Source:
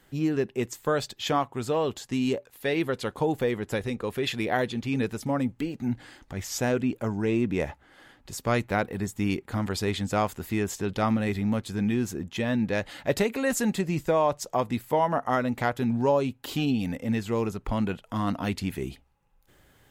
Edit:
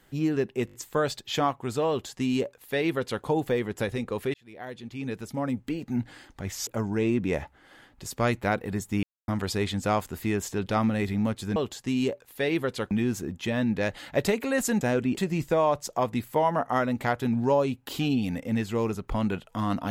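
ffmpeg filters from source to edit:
-filter_complex "[0:a]asplit=13[a][b][c][d][e][f][g][h][i][j][k][l][m];[a]atrim=end=0.682[n];[b]atrim=start=0.658:end=0.682[o];[c]atrim=start=0.658:end=0.682[p];[d]atrim=start=0.658:end=0.682[q];[e]atrim=start=0.658:end=4.26,asetpts=PTS-STARTPTS,afade=t=out:st=3.598:d=0.004:c=hsin[r];[f]atrim=start=4.26:end=6.592,asetpts=PTS-STARTPTS,afade=t=in:d=1.49[s];[g]atrim=start=6.938:end=9.3,asetpts=PTS-STARTPTS,afade=t=out:st=2.358:d=0.004:c=hsin[t];[h]atrim=start=9.3:end=9.55,asetpts=PTS-STARTPTS,volume=0[u];[i]atrim=start=9.55:end=11.832,asetpts=PTS-STARTPTS,afade=t=in:d=0.004:c=hsin[v];[j]atrim=start=1.808:end=3.162[w];[k]atrim=start=11.828:end=13.732[x];[l]atrim=start=6.588:end=6.942[y];[m]atrim=start=13.728[z];[n][o]acrossfade=d=0.004:c1=hsin:c2=hsin[aa];[aa][p]acrossfade=d=0.004:c1=hsin:c2=hsin[ab];[ab][q]acrossfade=d=0.004:c1=hsin:c2=hsin[ac];[r][s]concat=n=2:v=0:a=1[ad];[ac][ad]acrossfade=d=0.004:c1=hsin:c2=hsin[ae];[t][u][v]concat=n=3:v=0:a=1[af];[ae][af]acrossfade=d=0.004:c1=hsin:c2=hsin[ag];[ag][w]acrossfade=d=0.004:c1=hsin:c2=hsin[ah];[ah][x]acrossfade=d=0.004:c1=hsin:c2=hsin[ai];[ai][y]acrossfade=d=0.004:c1=hsin:c2=hsin[aj];[aj][z]acrossfade=d=0.004:c1=hsin:c2=hsin"

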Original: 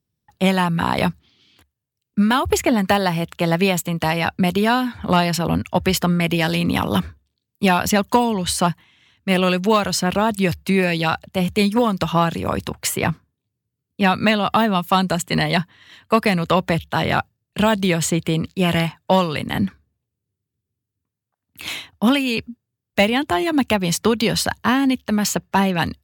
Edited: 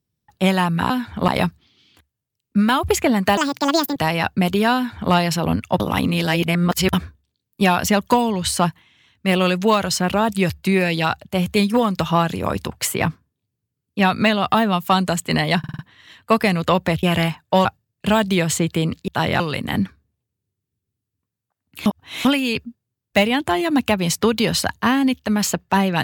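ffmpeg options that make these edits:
-filter_complex "[0:a]asplit=17[a][b][c][d][e][f][g][h][i][j][k][l][m][n][o][p][q];[a]atrim=end=0.902[r];[b]atrim=start=4.768:end=5.152[s];[c]atrim=start=0.898:end=2.994[t];[d]atrim=start=2.99:end=3.98,asetpts=PTS-STARTPTS,asetrate=74088,aresample=44100[u];[e]atrim=start=3.976:end=5.822[v];[f]atrim=start=5.818:end=6.952,asetpts=PTS-STARTPTS,areverse[w];[g]atrim=start=6.948:end=15.662[x];[h]atrim=start=15.608:end=15.662[y];[i]atrim=start=15.608:end=15.662[z];[j]atrim=start=15.608:end=15.662[aa];[k]atrim=start=15.608:end=16.852[ab];[l]atrim=start=18.598:end=19.222[ac];[m]atrim=start=17.168:end=18.602[ad];[n]atrim=start=16.848:end=17.172[ae];[o]atrim=start=19.218:end=21.682[af];[p]atrim=start=21.678:end=22.072,asetpts=PTS-STARTPTS,areverse[ag];[q]atrim=start=22.068[ah];[r][s]acrossfade=d=0.004:c1=hsin:c2=hsin[ai];[ai][t]acrossfade=d=0.004:c1=hsin:c2=hsin[aj];[aj][u]acrossfade=d=0.004:c1=hsin:c2=hsin[ak];[ak][v]acrossfade=d=0.004:c1=hsin:c2=hsin[al];[al][w]acrossfade=d=0.004:c1=hsin:c2=hsin[am];[am][x]acrossfade=d=0.004:c1=hsin:c2=hsin[an];[an][y]acrossfade=d=0.004:c1=hsin:c2=hsin[ao];[ao][z]acrossfade=d=0.004:c1=hsin:c2=hsin[ap];[ap][aa]acrossfade=d=0.004:c1=hsin:c2=hsin[aq];[aq][ab]acrossfade=d=0.004:c1=hsin:c2=hsin[ar];[ar][ac]acrossfade=d=0.004:c1=hsin:c2=hsin[as];[as][ad]acrossfade=d=0.004:c1=hsin:c2=hsin[at];[at][ae]acrossfade=d=0.004:c1=hsin:c2=hsin[au];[au][af]acrossfade=d=0.004:c1=hsin:c2=hsin[av];[av][ag]acrossfade=d=0.004:c1=hsin:c2=hsin[aw];[aw][ah]acrossfade=d=0.004:c1=hsin:c2=hsin"

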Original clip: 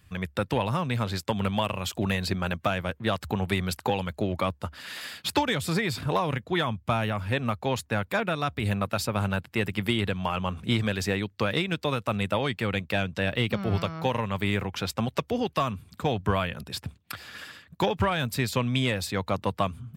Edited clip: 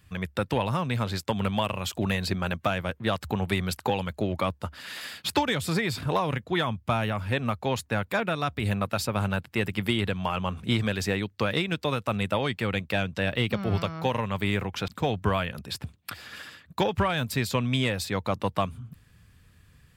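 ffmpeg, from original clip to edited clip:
-filter_complex "[0:a]asplit=2[a][b];[a]atrim=end=14.882[c];[b]atrim=start=15.898[d];[c][d]acrossfade=d=0.004:c1=hsin:c2=hsin"

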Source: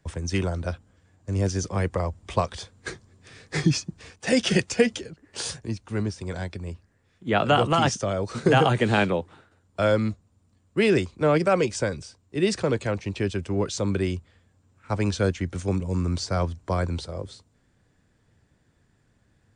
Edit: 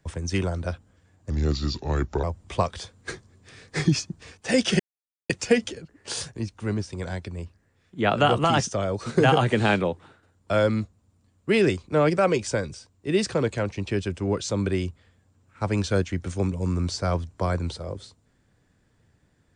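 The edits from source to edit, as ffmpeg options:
-filter_complex "[0:a]asplit=4[a][b][c][d];[a]atrim=end=1.304[e];[b]atrim=start=1.3:end=2.02,asetpts=PTS-STARTPTS,asetrate=33957,aresample=44100,atrim=end_sample=41236,asetpts=PTS-STARTPTS[f];[c]atrim=start=2.016:end=4.58,asetpts=PTS-STARTPTS,afade=t=out:st=2.56:d=0.004:c=hsin,apad=pad_dur=0.5[g];[d]atrim=start=4.58,asetpts=PTS-STARTPTS,afade=t=in:d=0.004:c=hsin[h];[e][f]acrossfade=d=0.004:c1=hsin:c2=hsin[i];[g][h]concat=n=2:v=0:a=1[j];[i][j]acrossfade=d=0.004:c1=hsin:c2=hsin"

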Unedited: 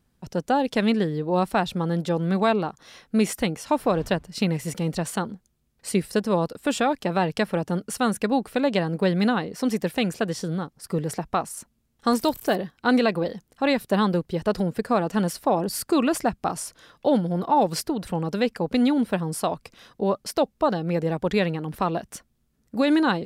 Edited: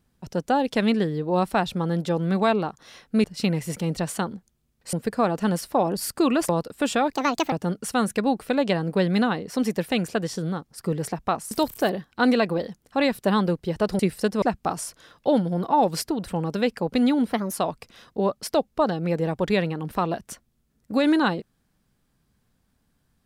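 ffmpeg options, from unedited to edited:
-filter_complex "[0:a]asplit=11[a][b][c][d][e][f][g][h][i][j][k];[a]atrim=end=3.242[l];[b]atrim=start=4.218:end=5.912[m];[c]atrim=start=14.648:end=16.212[n];[d]atrim=start=6.338:end=6.974[o];[e]atrim=start=6.97:end=7.58,asetpts=PTS-STARTPTS,asetrate=67032,aresample=44100,atrim=end_sample=17698,asetpts=PTS-STARTPTS[p];[f]atrim=start=7.576:end=11.572[q];[g]atrim=start=12.168:end=14.652[r];[h]atrim=start=5.908:end=6.342[s];[i]atrim=start=16.208:end=19.114[t];[j]atrim=start=19.11:end=19.37,asetpts=PTS-STARTPTS,asetrate=53361,aresample=44100,atrim=end_sample=9476,asetpts=PTS-STARTPTS[u];[k]atrim=start=19.366[v];[l][m]acrossfade=d=0.004:c1=hsin:c2=hsin[w];[w][n]acrossfade=d=0.004:c1=hsin:c2=hsin[x];[x][o]acrossfade=d=0.004:c1=hsin:c2=hsin[y];[y][p]acrossfade=d=0.004:c1=hsin:c2=hsin[z];[z][q]acrossfade=d=0.004:c1=hsin:c2=hsin[aa];[aa][r]acrossfade=d=0.004:c1=hsin:c2=hsin[ab];[ab][s]acrossfade=d=0.004:c1=hsin:c2=hsin[ac];[ac][t]acrossfade=d=0.004:c1=hsin:c2=hsin[ad];[ad][u]acrossfade=d=0.004:c1=hsin:c2=hsin[ae];[ae][v]acrossfade=d=0.004:c1=hsin:c2=hsin"

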